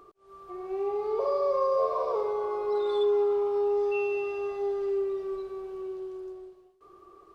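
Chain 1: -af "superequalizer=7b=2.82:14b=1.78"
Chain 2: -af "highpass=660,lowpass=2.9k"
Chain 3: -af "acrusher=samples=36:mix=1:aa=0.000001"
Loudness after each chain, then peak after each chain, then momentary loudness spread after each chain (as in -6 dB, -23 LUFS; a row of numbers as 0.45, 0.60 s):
-21.0, -34.5, -28.0 LUFS; -10.5, -19.5, -18.0 dBFS; 13, 17, 13 LU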